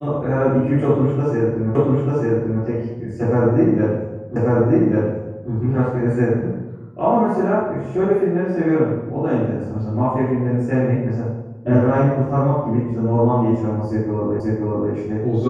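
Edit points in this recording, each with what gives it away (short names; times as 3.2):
1.75 repeat of the last 0.89 s
4.36 repeat of the last 1.14 s
14.4 repeat of the last 0.53 s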